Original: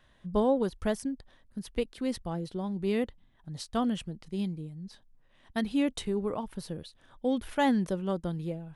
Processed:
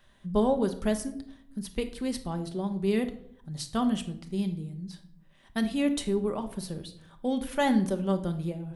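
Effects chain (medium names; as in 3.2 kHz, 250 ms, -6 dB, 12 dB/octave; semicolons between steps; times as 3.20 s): treble shelf 6.1 kHz +7.5 dB; reverberation RT60 0.65 s, pre-delay 5 ms, DRR 6.5 dB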